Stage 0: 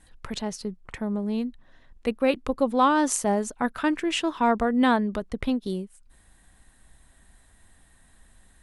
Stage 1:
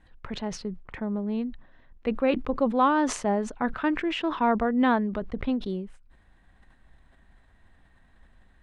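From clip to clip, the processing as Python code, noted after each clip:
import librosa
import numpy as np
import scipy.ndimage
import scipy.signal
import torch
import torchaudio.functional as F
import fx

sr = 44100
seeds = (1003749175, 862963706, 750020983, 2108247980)

y = scipy.signal.sosfilt(scipy.signal.butter(2, 2800.0, 'lowpass', fs=sr, output='sos'), x)
y = fx.sustainer(y, sr, db_per_s=110.0)
y = y * librosa.db_to_amplitude(-1.5)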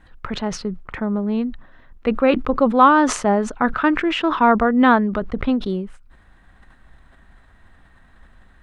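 y = fx.peak_eq(x, sr, hz=1300.0, db=6.0, octaves=0.49)
y = y * librosa.db_to_amplitude(7.5)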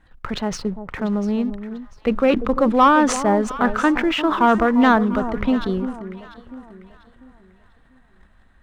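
y = fx.leveller(x, sr, passes=1)
y = fx.echo_alternate(y, sr, ms=347, hz=980.0, feedback_pct=56, wet_db=-10.5)
y = y * librosa.db_to_amplitude(-3.5)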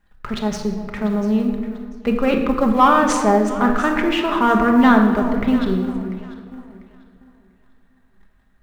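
y = fx.law_mismatch(x, sr, coded='A')
y = fx.room_shoebox(y, sr, seeds[0], volume_m3=1300.0, walls='mixed', distance_m=1.3)
y = y * librosa.db_to_amplitude(-1.0)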